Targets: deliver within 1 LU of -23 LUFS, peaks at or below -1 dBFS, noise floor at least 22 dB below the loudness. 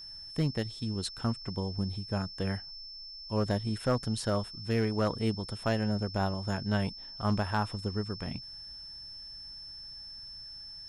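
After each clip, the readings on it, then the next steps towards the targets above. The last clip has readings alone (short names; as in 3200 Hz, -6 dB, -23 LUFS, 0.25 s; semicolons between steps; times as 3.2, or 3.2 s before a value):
clipped 0.3%; flat tops at -20.0 dBFS; steady tone 5300 Hz; tone level -43 dBFS; loudness -33.5 LUFS; peak -20.0 dBFS; loudness target -23.0 LUFS
-> clip repair -20 dBFS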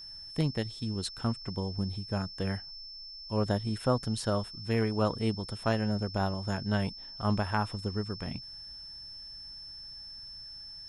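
clipped 0.0%; steady tone 5300 Hz; tone level -43 dBFS
-> notch 5300 Hz, Q 30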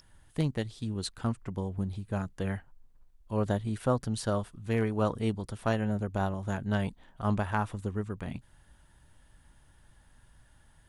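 steady tone none; loudness -32.5 LUFS; peak -13.5 dBFS; loudness target -23.0 LUFS
-> gain +9.5 dB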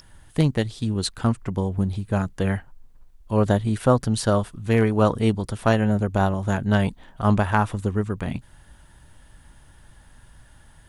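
loudness -23.0 LUFS; peak -4.0 dBFS; noise floor -52 dBFS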